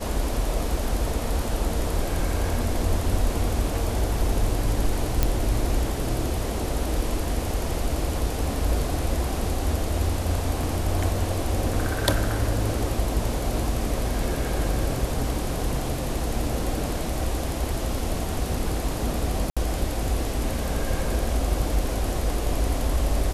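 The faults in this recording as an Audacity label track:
5.230000	5.230000	click −6 dBFS
10.630000	10.630000	drop-out 2.6 ms
19.500000	19.570000	drop-out 66 ms

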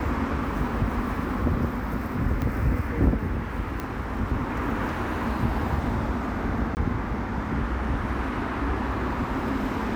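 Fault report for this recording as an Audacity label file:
2.420000	2.420000	click −17 dBFS
3.800000	3.800000	click −17 dBFS
6.750000	6.770000	drop-out 19 ms

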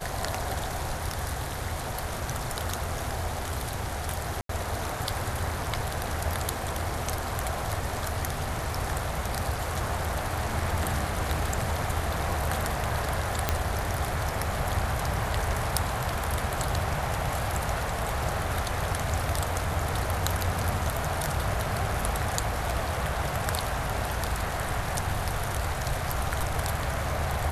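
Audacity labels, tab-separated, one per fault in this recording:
4.410000	4.490000	drop-out 83 ms
13.490000	13.490000	click −7 dBFS

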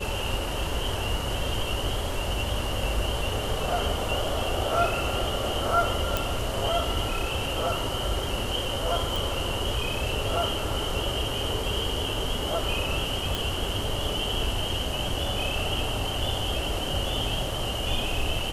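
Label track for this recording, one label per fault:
6.170000	6.170000	click
9.160000	9.160000	click
13.350000	13.350000	click

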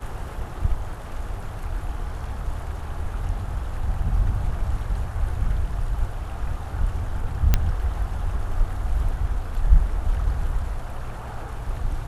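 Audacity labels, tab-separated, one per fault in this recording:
7.540000	7.540000	click −4 dBFS

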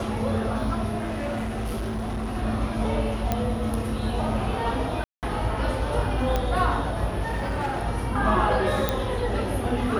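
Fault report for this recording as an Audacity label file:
0.960000	2.360000	clipping −25.5 dBFS
3.320000	3.320000	click −10 dBFS
5.040000	5.230000	drop-out 188 ms
6.360000	6.360000	click −11 dBFS
7.310000	7.850000	clipping −23 dBFS
8.890000	8.890000	click −8 dBFS

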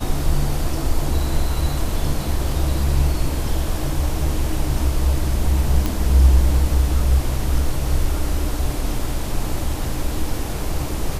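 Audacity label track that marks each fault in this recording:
5.860000	5.860000	click

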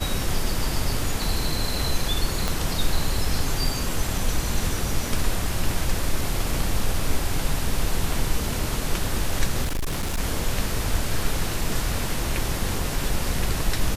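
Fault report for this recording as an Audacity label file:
2.480000	2.480000	click
9.640000	10.200000	clipping −22 dBFS

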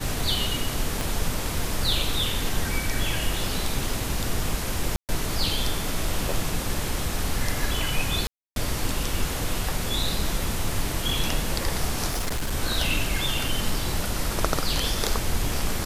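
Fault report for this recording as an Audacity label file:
1.010000	1.010000	click
4.960000	5.090000	drop-out 128 ms
8.270000	8.560000	drop-out 292 ms
12.090000	12.530000	clipping −23 dBFS

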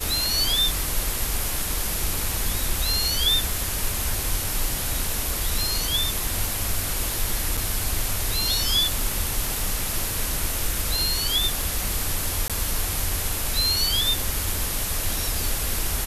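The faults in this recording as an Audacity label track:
7.570000	7.580000	drop-out 5.5 ms
12.480000	12.500000	drop-out 17 ms

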